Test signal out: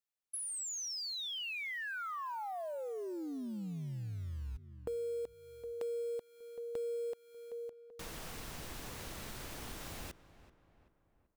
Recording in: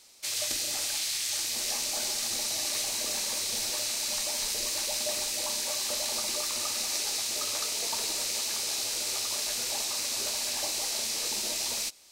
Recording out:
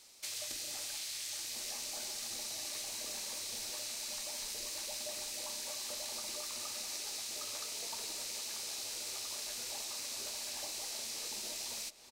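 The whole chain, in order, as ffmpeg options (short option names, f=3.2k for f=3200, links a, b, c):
-filter_complex "[0:a]acrusher=bits=6:mode=log:mix=0:aa=0.000001,asplit=2[a][b];[b]adelay=384,lowpass=f=2.2k:p=1,volume=-17.5dB,asplit=2[c][d];[d]adelay=384,lowpass=f=2.2k:p=1,volume=0.51,asplit=2[e][f];[f]adelay=384,lowpass=f=2.2k:p=1,volume=0.51,asplit=2[g][h];[h]adelay=384,lowpass=f=2.2k:p=1,volume=0.51[i];[a][c][e][g][i]amix=inputs=5:normalize=0,acompressor=threshold=-39dB:ratio=2.5,volume=-3dB"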